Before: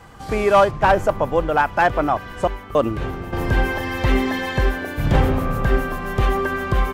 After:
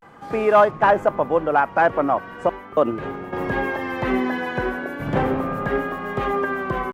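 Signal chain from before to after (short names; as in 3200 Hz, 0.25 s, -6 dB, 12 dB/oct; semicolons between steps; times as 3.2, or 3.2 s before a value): three-band isolator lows -19 dB, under 150 Hz, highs -12 dB, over 2300 Hz; vibrato 0.38 Hz 79 cents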